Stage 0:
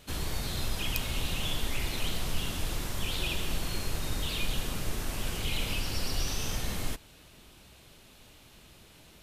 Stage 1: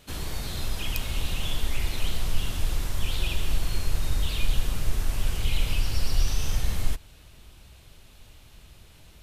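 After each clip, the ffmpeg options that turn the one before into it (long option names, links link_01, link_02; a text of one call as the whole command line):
ffmpeg -i in.wav -af "asubboost=boost=3:cutoff=120" out.wav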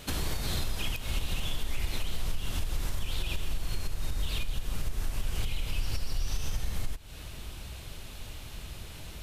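ffmpeg -i in.wav -af "acompressor=threshold=-31dB:ratio=6,alimiter=level_in=5dB:limit=-24dB:level=0:latency=1:release=264,volume=-5dB,volume=8.5dB" out.wav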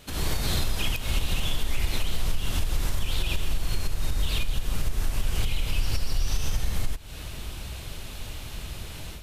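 ffmpeg -i in.wav -af "dynaudnorm=framelen=110:gausssize=3:maxgain=10dB,volume=-4.5dB" out.wav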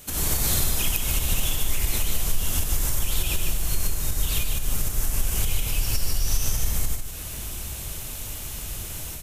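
ffmpeg -i in.wav -af "aexciter=amount=4.5:drive=2.8:freq=5900,aecho=1:1:150:0.473" out.wav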